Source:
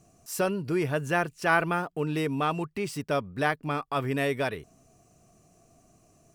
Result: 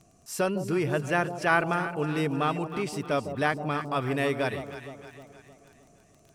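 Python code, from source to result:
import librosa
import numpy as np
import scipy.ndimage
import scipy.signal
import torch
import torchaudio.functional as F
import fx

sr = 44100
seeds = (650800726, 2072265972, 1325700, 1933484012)

y = scipy.signal.sosfilt(scipy.signal.butter(2, 11000.0, 'lowpass', fs=sr, output='sos'), x)
y = fx.dmg_crackle(y, sr, seeds[0], per_s=23.0, level_db=-43.0)
y = fx.echo_alternate(y, sr, ms=155, hz=820.0, feedback_pct=70, wet_db=-8.5)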